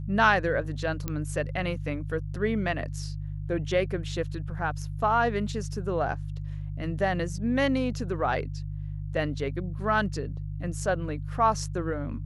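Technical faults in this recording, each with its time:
mains hum 50 Hz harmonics 3 −34 dBFS
0:01.08: click −16 dBFS

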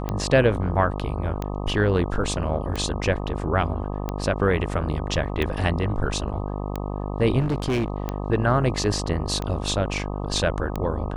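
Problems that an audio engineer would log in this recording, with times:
mains buzz 50 Hz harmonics 25 −29 dBFS
scratch tick 45 rpm −14 dBFS
0:07.39–0:07.90: clipping −19.5 dBFS

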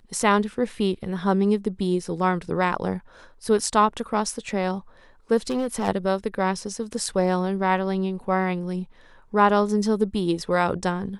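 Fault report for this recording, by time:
0:05.50–0:05.89: clipping −20.5 dBFS

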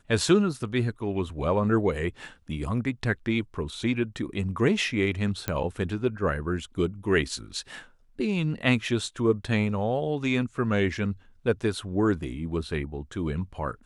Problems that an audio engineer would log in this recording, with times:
0:05.48: click −12 dBFS

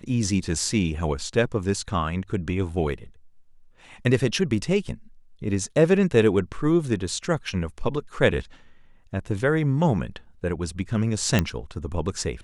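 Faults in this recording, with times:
0:11.39: click −6 dBFS

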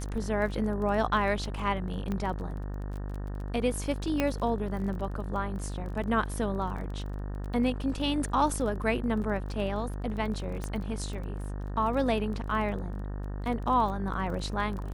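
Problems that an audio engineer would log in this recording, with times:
mains buzz 50 Hz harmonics 37 −35 dBFS
surface crackle 23 per second −37 dBFS
0:02.12: click −21 dBFS
0:04.20: click −13 dBFS
0:10.64: click −21 dBFS

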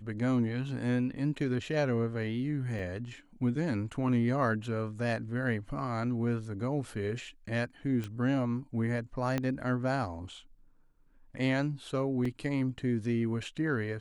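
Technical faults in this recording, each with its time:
0:02.79: drop-out 3.2 ms
0:08.04: click −24 dBFS
0:09.38: click −17 dBFS
0:12.25: drop-out 4 ms

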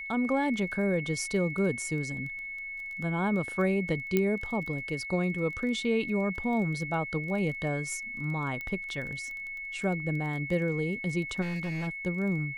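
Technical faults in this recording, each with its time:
surface crackle 15 per second −37 dBFS
whistle 2,200 Hz −36 dBFS
0:04.17: click −13 dBFS
0:08.61: click −24 dBFS
0:11.41–0:11.88: clipping −29.5 dBFS

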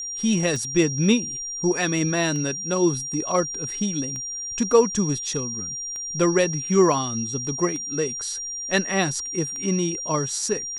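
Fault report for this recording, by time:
scratch tick 33 1/3 rpm
whistle 5,700 Hz −29 dBFS

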